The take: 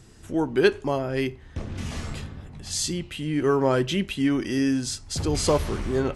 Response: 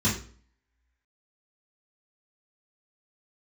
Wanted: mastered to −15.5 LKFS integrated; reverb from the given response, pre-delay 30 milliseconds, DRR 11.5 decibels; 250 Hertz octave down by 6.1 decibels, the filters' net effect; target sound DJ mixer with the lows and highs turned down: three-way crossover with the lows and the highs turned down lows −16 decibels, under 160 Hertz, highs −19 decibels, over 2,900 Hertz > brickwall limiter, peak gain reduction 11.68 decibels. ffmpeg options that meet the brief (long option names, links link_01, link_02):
-filter_complex "[0:a]equalizer=frequency=250:width_type=o:gain=-6.5,asplit=2[link_01][link_02];[1:a]atrim=start_sample=2205,adelay=30[link_03];[link_02][link_03]afir=irnorm=-1:irlink=0,volume=-23dB[link_04];[link_01][link_04]amix=inputs=2:normalize=0,acrossover=split=160 2900:gain=0.158 1 0.112[link_05][link_06][link_07];[link_05][link_06][link_07]amix=inputs=3:normalize=0,volume=17dB,alimiter=limit=-3.5dB:level=0:latency=1"